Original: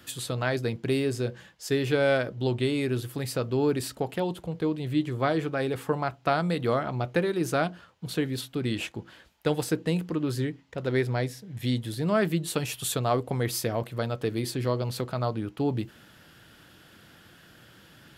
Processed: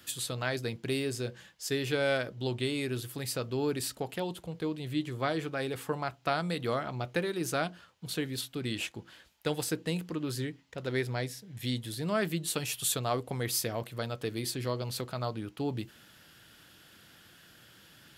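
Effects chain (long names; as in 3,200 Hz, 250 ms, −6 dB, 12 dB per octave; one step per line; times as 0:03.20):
high-shelf EQ 2,100 Hz +8 dB
level −6.5 dB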